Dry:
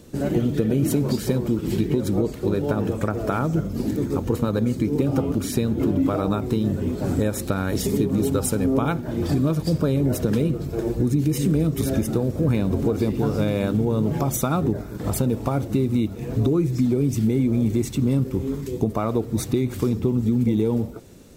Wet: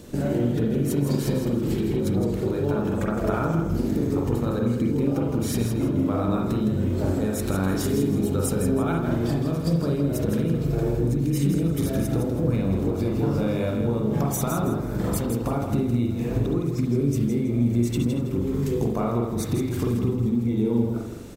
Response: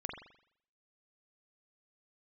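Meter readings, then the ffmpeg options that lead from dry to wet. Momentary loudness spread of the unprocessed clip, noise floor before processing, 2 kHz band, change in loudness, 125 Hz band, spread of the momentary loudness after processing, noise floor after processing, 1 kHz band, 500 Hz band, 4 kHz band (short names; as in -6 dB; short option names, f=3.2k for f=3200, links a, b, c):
4 LU, -34 dBFS, -1.5 dB, -1.5 dB, -1.0 dB, 2 LU, -28 dBFS, -1.5 dB, -1.5 dB, -2.5 dB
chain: -filter_complex "[0:a]acompressor=threshold=-27dB:ratio=6,aecho=1:1:162|324|486:0.447|0.125|0.035[a];[1:a]atrim=start_sample=2205,afade=t=out:st=0.14:d=0.01,atrim=end_sample=6615[b];[a][b]afir=irnorm=-1:irlink=0,volume=6dB"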